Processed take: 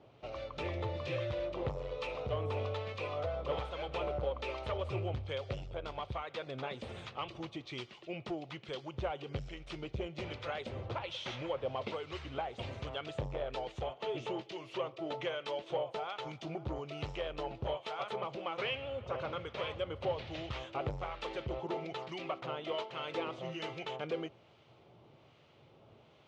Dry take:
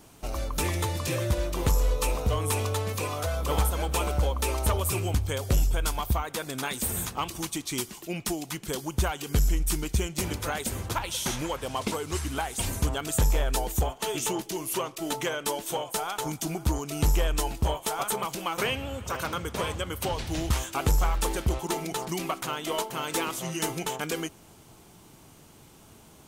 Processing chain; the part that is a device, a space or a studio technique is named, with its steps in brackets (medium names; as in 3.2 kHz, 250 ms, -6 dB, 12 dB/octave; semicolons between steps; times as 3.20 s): guitar amplifier with harmonic tremolo (harmonic tremolo 1.2 Hz, depth 50%, crossover 1.1 kHz; saturation -23 dBFS, distortion -15 dB; cabinet simulation 110–3600 Hz, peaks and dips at 120 Hz +4 dB, 190 Hz -9 dB, 280 Hz -7 dB, 560 Hz +7 dB, 960 Hz -4 dB, 1.6 kHz -6 dB); trim -3.5 dB